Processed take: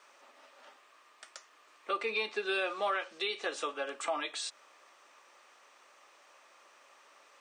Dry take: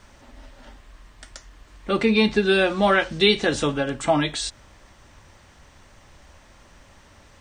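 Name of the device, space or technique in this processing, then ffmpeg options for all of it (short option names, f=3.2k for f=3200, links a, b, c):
laptop speaker: -af "highpass=f=400:w=0.5412,highpass=f=400:w=1.3066,equalizer=f=1.2k:t=o:w=0.2:g=10,equalizer=f=2.5k:t=o:w=0.24:g=5.5,alimiter=limit=-15dB:level=0:latency=1:release=383,volume=-8dB"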